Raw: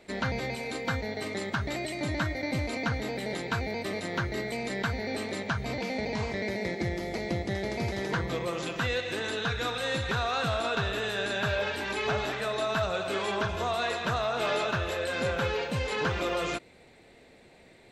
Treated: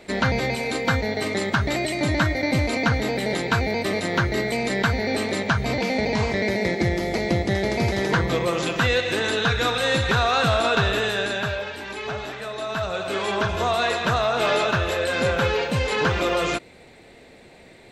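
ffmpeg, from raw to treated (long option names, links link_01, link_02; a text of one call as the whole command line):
ffmpeg -i in.wav -af "volume=17.5dB,afade=type=out:start_time=10.93:duration=0.72:silence=0.316228,afade=type=in:start_time=12.55:duration=1.1:silence=0.375837" out.wav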